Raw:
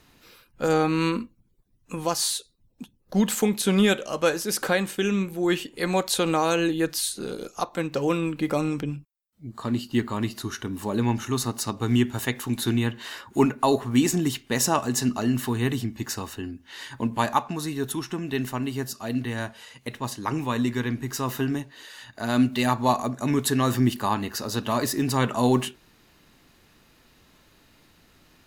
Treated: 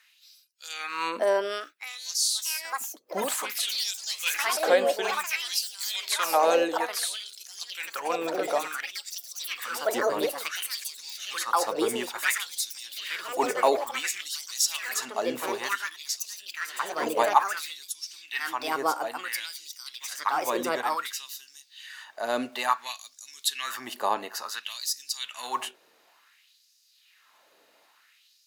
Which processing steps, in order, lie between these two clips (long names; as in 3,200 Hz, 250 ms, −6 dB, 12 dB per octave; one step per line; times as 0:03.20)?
delay with pitch and tempo change per echo 714 ms, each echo +4 semitones, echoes 3
auto-filter high-pass sine 0.57 Hz 500–5,400 Hz
level −3.5 dB